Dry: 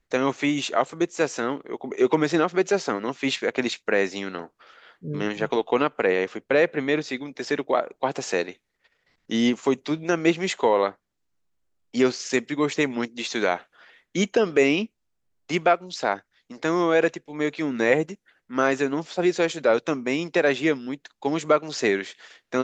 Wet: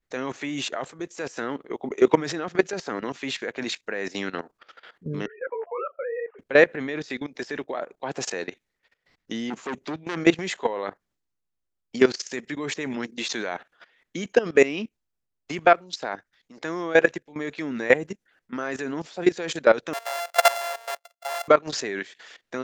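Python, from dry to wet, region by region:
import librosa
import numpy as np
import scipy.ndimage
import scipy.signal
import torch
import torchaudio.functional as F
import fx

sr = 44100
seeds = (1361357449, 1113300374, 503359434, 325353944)

y = fx.chain(x, sr, fx.sine_speech(),
    fx.lowpass(hz=1800.0, slope=24),
    fx.detune_double(cents=22), at=(5.26, 6.39))
y = fx.chain(y, sr, fx.high_shelf(hz=4000.0, db=-3.5),
    fx.transformer_sat(knee_hz=1700.0), at=(9.5, 10.17))
y = fx.chain(y, sr, fx.sample_sort(block=64),
    fx.steep_highpass(hz=530.0, slope=48),
    fx.dynamic_eq(hz=830.0, q=3.9, threshold_db=-41.0, ratio=4.0, max_db=7), at=(19.93, 21.48))
y = fx.dynamic_eq(y, sr, hz=1700.0, q=4.6, threshold_db=-45.0, ratio=4.0, max_db=5)
y = fx.level_steps(y, sr, step_db=17)
y = y * librosa.db_to_amplitude(4.5)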